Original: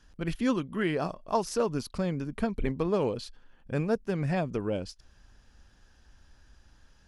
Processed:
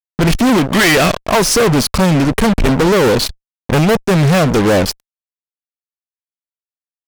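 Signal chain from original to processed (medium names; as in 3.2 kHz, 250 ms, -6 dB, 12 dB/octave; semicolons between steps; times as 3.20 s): 0.72–1.23 s: high-order bell 2.6 kHz +12.5 dB; fuzz box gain 43 dB, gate -43 dBFS; trim +4 dB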